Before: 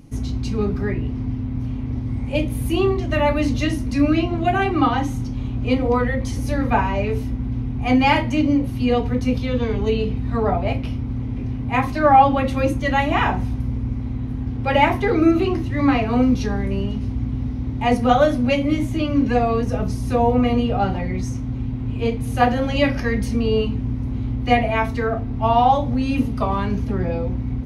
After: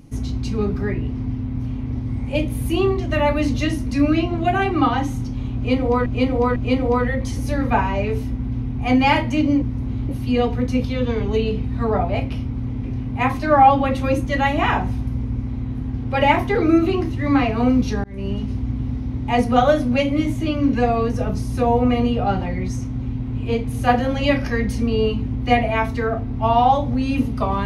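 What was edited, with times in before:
0:05.56–0:06.06: repeat, 3 plays
0:16.57–0:16.86: fade in
0:23.87–0:24.34: move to 0:08.62

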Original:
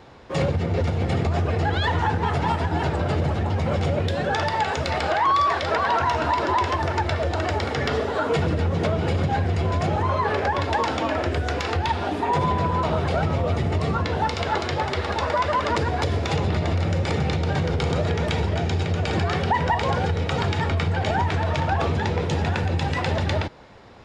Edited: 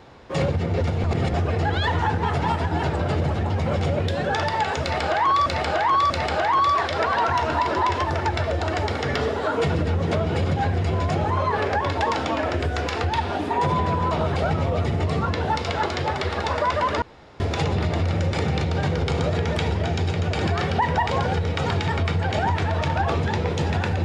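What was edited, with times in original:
0:01.04–0:01.34: reverse
0:04.82–0:05.46: repeat, 3 plays
0:15.74–0:16.12: fill with room tone

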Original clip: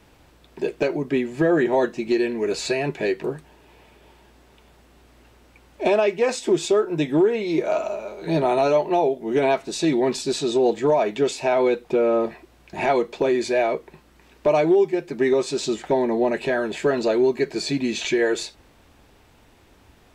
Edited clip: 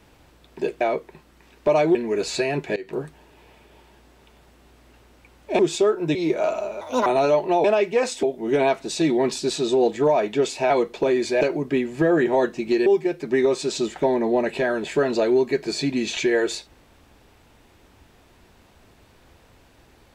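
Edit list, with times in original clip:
0:00.81–0:02.26: swap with 0:13.60–0:14.74
0:03.07–0:03.32: fade in, from −20 dB
0:05.90–0:06.49: move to 0:09.06
0:07.05–0:07.43: remove
0:08.09–0:08.48: play speed 155%
0:11.53–0:12.89: remove

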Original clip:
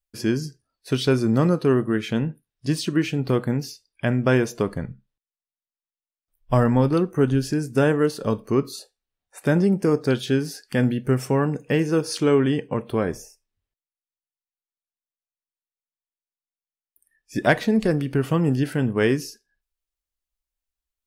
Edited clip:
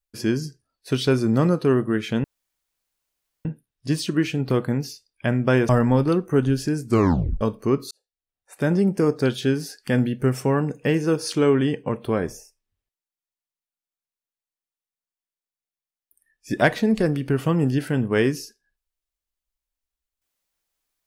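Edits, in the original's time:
0:02.24: splice in room tone 1.21 s
0:04.48–0:06.54: remove
0:07.71: tape stop 0.55 s
0:08.76–0:09.71: fade in

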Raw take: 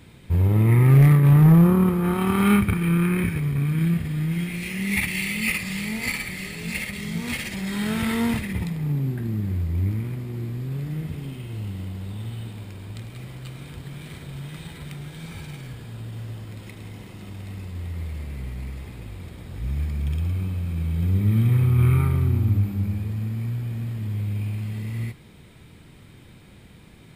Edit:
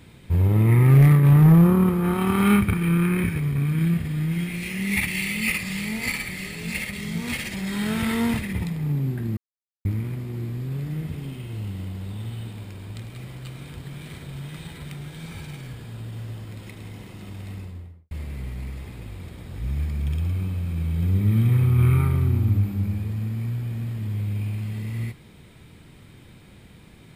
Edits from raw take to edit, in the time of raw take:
0:09.37–0:09.85: silence
0:17.50–0:18.11: fade out and dull

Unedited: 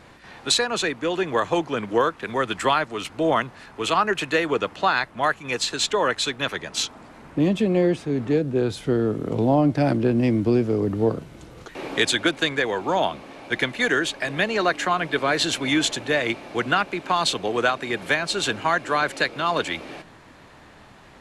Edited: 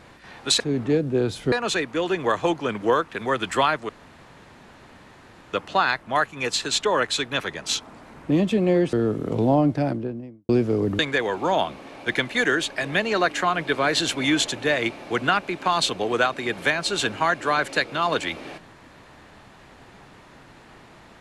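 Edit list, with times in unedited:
0:02.97–0:04.61: fill with room tone
0:08.01–0:08.93: move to 0:00.60
0:09.46–0:10.49: fade out and dull
0:10.99–0:12.43: remove

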